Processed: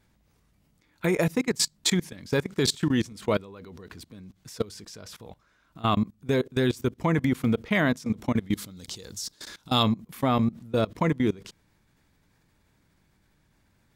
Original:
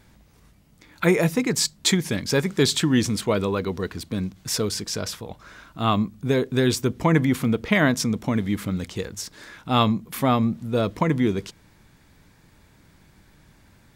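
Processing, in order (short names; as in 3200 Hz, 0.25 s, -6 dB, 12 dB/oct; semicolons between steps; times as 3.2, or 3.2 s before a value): level quantiser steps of 22 dB; 8.53–9.83 resonant high shelf 3100 Hz +8.5 dB, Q 1.5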